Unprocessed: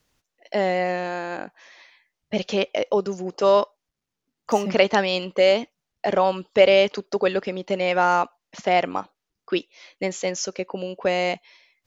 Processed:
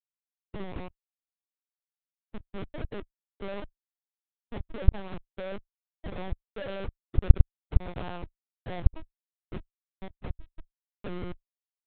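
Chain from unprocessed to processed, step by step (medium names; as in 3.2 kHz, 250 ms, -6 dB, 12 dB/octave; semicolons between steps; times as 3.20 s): Schmitt trigger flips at -18 dBFS; dynamic bell 150 Hz, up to +5 dB, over -41 dBFS, Q 0.74; LPC vocoder at 8 kHz pitch kept; trim -12.5 dB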